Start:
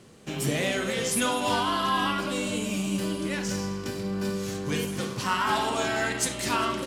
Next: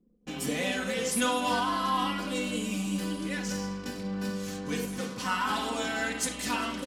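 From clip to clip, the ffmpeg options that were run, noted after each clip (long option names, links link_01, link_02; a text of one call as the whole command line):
ffmpeg -i in.wav -af "anlmdn=0.1,aecho=1:1:4:0.71,volume=-5dB" out.wav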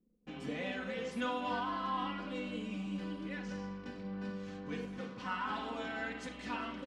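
ffmpeg -i in.wav -af "lowpass=2900,volume=-8dB" out.wav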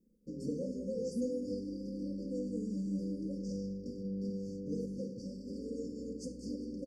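ffmpeg -i in.wav -af "afftfilt=real='re*(1-between(b*sr/4096,580,4500))':imag='im*(1-between(b*sr/4096,580,4500))':win_size=4096:overlap=0.75,volume=3.5dB" out.wav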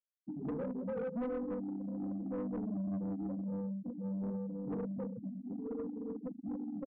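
ffmpeg -i in.wav -af "afftfilt=real='re*gte(hypot(re,im),0.0355)':imag='im*gte(hypot(re,im),0.0355)':win_size=1024:overlap=0.75,asoftclip=type=tanh:threshold=-36.5dB,volume=3.5dB" out.wav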